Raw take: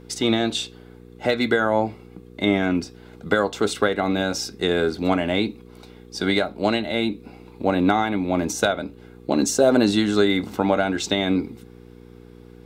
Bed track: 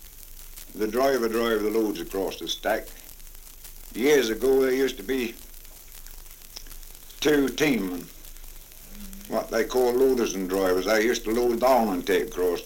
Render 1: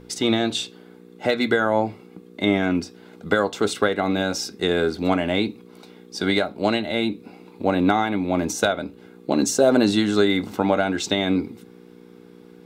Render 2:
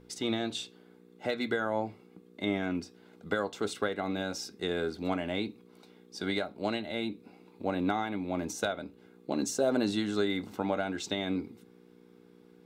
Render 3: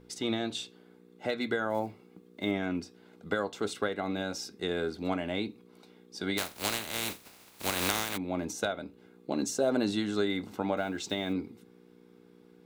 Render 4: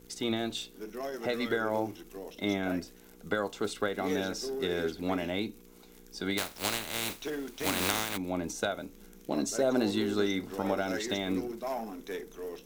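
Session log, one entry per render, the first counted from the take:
hum removal 60 Hz, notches 2
level −11 dB
0:01.70–0:02.53: one scale factor per block 7 bits; 0:06.37–0:08.16: compressing power law on the bin magnitudes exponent 0.26; 0:10.77–0:11.35: one scale factor per block 7 bits
mix in bed track −15.5 dB

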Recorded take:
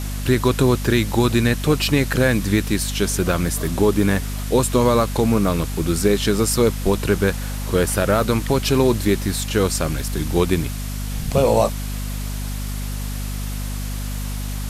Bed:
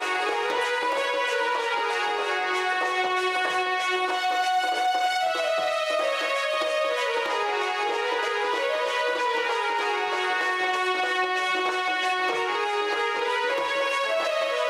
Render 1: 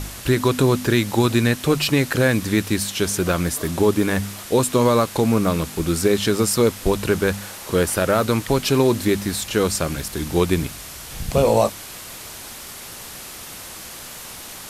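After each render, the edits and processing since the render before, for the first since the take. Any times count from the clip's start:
hum removal 50 Hz, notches 5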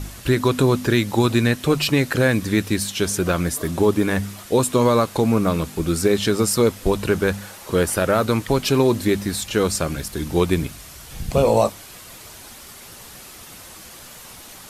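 broadband denoise 6 dB, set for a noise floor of −37 dBFS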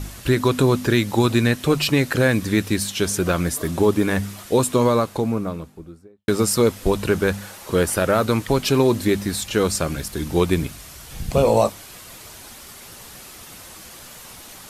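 0:04.57–0:06.28: fade out and dull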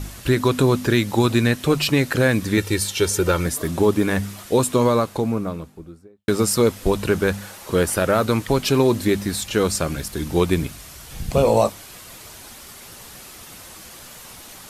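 0:02.57–0:03.46: comb filter 2.2 ms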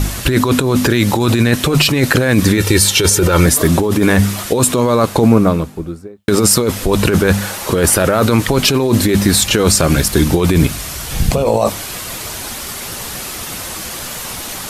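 compressor whose output falls as the input rises −22 dBFS, ratio −1
boost into a limiter +11.5 dB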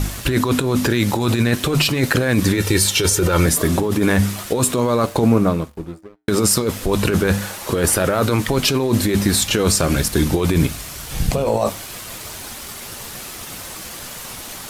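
dead-zone distortion −35.5 dBFS
flanger 0.36 Hz, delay 6.5 ms, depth 3.7 ms, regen −83%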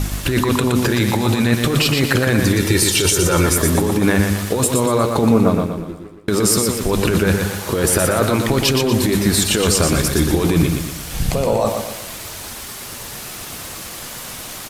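repeating echo 119 ms, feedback 44%, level −5 dB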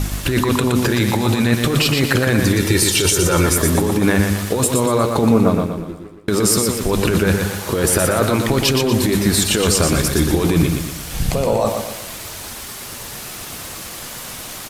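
no processing that can be heard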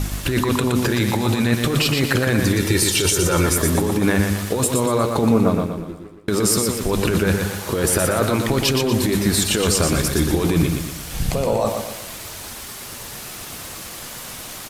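level −2.5 dB

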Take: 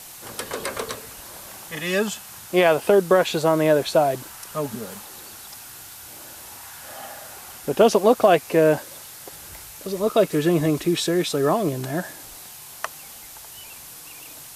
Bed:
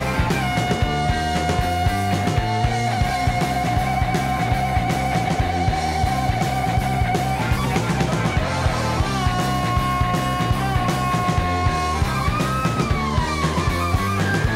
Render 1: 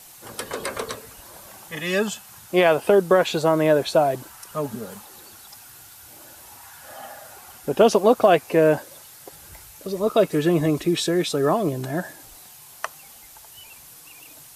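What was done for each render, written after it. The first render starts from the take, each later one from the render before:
broadband denoise 6 dB, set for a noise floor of −41 dBFS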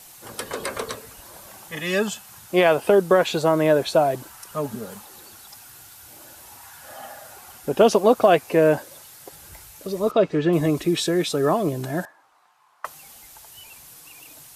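0:10.11–0:10.53: high-frequency loss of the air 150 metres
0:12.05–0:12.85: resonant band-pass 1,100 Hz, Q 2.7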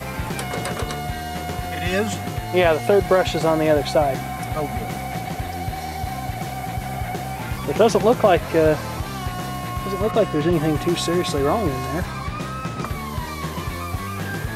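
mix in bed −7.5 dB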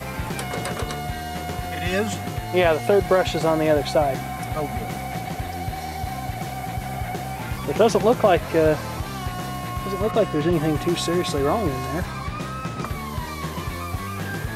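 level −1.5 dB

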